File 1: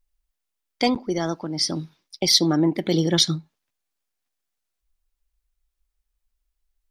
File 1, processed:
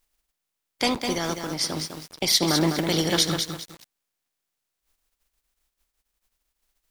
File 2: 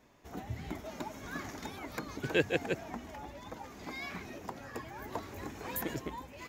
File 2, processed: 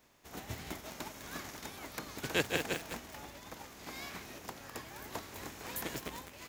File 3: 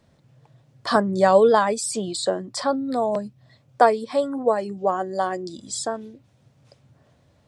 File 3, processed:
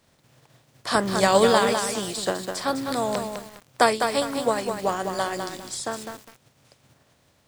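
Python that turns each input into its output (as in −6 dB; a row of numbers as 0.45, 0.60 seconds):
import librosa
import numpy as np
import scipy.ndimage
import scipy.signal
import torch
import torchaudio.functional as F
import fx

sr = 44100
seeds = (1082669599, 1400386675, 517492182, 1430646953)

y = fx.spec_flatten(x, sr, power=0.58)
y = fx.echo_crushed(y, sr, ms=204, feedback_pct=35, bits=6, wet_db=-5.5)
y = F.gain(torch.from_numpy(y), -3.0).numpy()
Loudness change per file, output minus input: −2.5, −1.5, −2.0 LU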